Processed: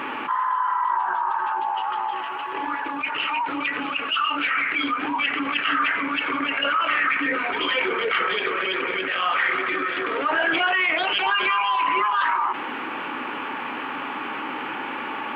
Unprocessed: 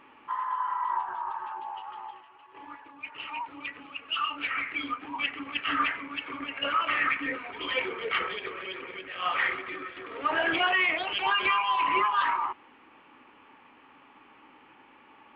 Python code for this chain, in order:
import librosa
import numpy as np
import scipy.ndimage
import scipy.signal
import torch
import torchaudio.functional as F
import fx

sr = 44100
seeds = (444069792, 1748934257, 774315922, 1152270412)

y = scipy.signal.sosfilt(scipy.signal.butter(2, 160.0, 'highpass', fs=sr, output='sos'), x)
y = fx.peak_eq(y, sr, hz=1500.0, db=5.5, octaves=0.3)
y = fx.env_flatten(y, sr, amount_pct=70)